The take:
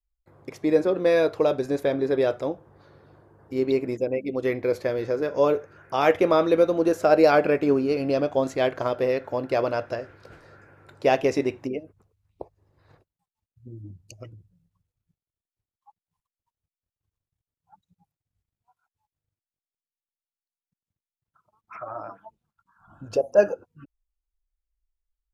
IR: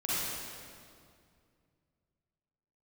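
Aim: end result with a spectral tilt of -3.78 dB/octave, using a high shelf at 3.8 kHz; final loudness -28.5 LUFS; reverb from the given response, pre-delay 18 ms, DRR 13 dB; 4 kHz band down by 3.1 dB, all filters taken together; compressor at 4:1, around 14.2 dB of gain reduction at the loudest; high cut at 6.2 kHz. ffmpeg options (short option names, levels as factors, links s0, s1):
-filter_complex "[0:a]lowpass=6200,highshelf=f=3800:g=3.5,equalizer=f=4000:t=o:g=-5.5,acompressor=threshold=0.0316:ratio=4,asplit=2[s0][s1];[1:a]atrim=start_sample=2205,adelay=18[s2];[s1][s2]afir=irnorm=-1:irlink=0,volume=0.0891[s3];[s0][s3]amix=inputs=2:normalize=0,volume=1.88"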